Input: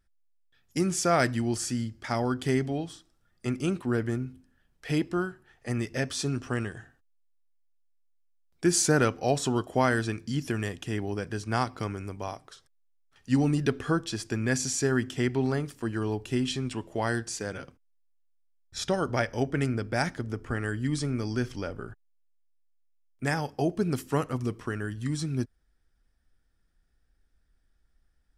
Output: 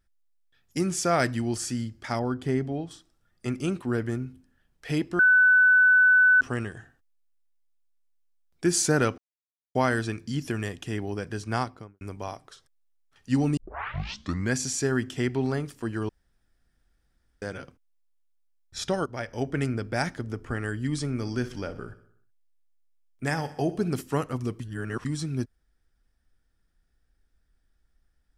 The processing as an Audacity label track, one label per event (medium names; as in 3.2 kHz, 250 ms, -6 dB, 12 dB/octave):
2.190000	2.910000	treble shelf 2 kHz -10 dB
5.190000	6.410000	bleep 1.5 kHz -14.5 dBFS
9.180000	9.750000	mute
11.530000	12.010000	studio fade out
13.570000	13.570000	tape start 0.97 s
16.090000	17.420000	room tone
19.060000	19.520000	fade in, from -13 dB
21.090000	24.010000	feedback delay 62 ms, feedback 58%, level -16 dB
24.600000	25.050000	reverse